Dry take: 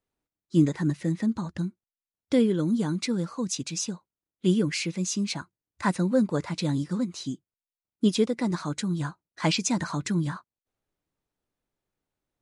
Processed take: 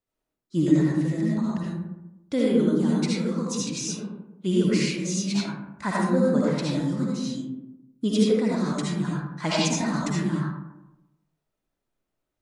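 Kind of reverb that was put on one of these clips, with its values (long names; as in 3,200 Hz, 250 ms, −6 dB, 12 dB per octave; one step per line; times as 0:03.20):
comb and all-pass reverb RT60 0.97 s, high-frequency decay 0.4×, pre-delay 35 ms, DRR −5.5 dB
level −4 dB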